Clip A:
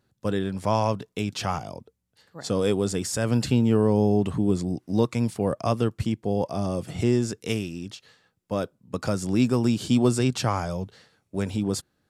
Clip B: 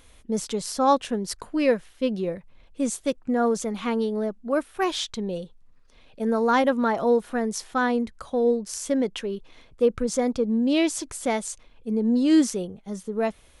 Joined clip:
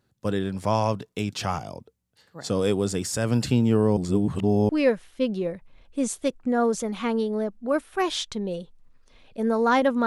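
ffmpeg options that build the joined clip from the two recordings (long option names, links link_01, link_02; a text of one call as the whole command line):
ffmpeg -i cue0.wav -i cue1.wav -filter_complex "[0:a]apad=whole_dur=10.06,atrim=end=10.06,asplit=2[link_01][link_02];[link_01]atrim=end=3.972[link_03];[link_02]atrim=start=3.968:end=4.692,asetpts=PTS-STARTPTS,areverse[link_04];[1:a]atrim=start=1.508:end=6.88[link_05];[link_03][link_04]acrossfade=duration=0.004:curve1=hsin:curve2=hsin[link_06];[link_06][link_05]acrossfade=duration=0.004:curve1=hsin:curve2=hsin" out.wav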